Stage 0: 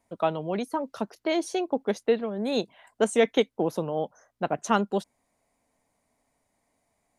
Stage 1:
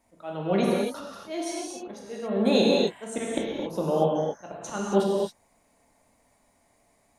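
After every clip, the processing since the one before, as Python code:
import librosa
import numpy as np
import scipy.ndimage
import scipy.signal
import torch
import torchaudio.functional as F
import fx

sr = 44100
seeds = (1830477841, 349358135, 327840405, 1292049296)

y = fx.auto_swell(x, sr, attack_ms=343.0)
y = fx.rev_gated(y, sr, seeds[0], gate_ms=300, shape='flat', drr_db=-4.5)
y = F.gain(torch.from_numpy(y), 3.0).numpy()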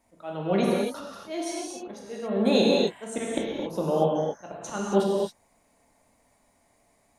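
y = x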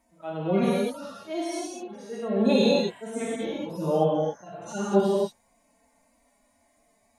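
y = fx.hpss_only(x, sr, part='harmonic')
y = F.gain(torch.from_numpy(y), 1.5).numpy()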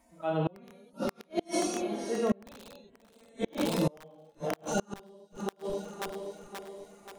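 y = (np.mod(10.0 ** (13.0 / 20.0) * x + 1.0, 2.0) - 1.0) / 10.0 ** (13.0 / 20.0)
y = fx.echo_split(y, sr, split_hz=300.0, low_ms=369, high_ms=530, feedback_pct=52, wet_db=-13.0)
y = fx.gate_flip(y, sr, shuts_db=-20.0, range_db=-33)
y = F.gain(torch.from_numpy(y), 3.5).numpy()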